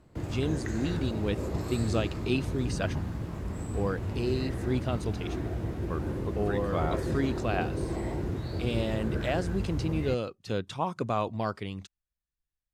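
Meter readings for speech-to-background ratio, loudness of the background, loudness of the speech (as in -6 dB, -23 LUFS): 1.0 dB, -34.0 LUFS, -33.0 LUFS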